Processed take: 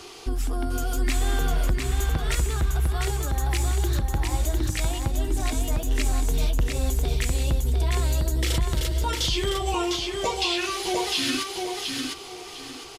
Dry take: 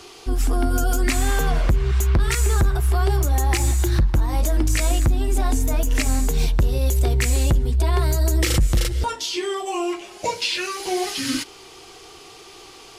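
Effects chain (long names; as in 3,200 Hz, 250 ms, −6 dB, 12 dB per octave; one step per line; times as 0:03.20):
dynamic equaliser 3,400 Hz, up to +6 dB, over −45 dBFS, Q 2.7
downward compressor, threshold −23 dBFS, peak gain reduction 9 dB
repeating echo 703 ms, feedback 28%, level −3.5 dB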